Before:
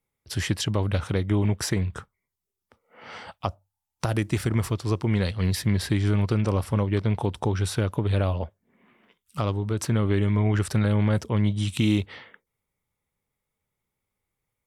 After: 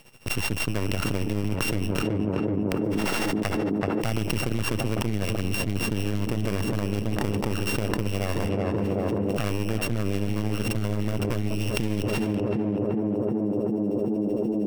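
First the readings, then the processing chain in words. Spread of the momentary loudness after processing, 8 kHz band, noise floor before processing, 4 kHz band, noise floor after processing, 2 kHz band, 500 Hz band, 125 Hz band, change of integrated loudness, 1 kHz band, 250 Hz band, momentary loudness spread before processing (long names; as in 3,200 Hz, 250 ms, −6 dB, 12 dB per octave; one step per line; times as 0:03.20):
2 LU, 0.0 dB, −85 dBFS, +1.5 dB, −29 dBFS, +3.0 dB, +3.0 dB, −3.5 dB, −1.5 dB, +1.0 dB, +2.0 dB, 10 LU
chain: samples sorted by size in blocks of 16 samples
high-pass filter 96 Hz 24 dB per octave
half-wave rectification
amplitude tremolo 13 Hz, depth 73%
tape delay 379 ms, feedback 89%, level −10 dB, low-pass 1,000 Hz
envelope flattener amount 100%
level −3 dB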